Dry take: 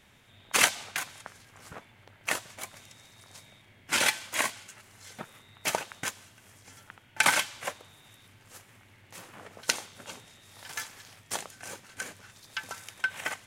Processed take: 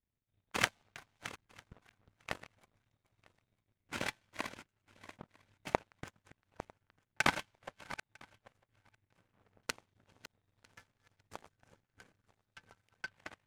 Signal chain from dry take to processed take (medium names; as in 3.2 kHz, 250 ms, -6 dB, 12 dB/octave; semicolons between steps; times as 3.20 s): backward echo that repeats 475 ms, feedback 46%, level -7 dB; RIAA curve playback; power-law waveshaper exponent 2; trim +2 dB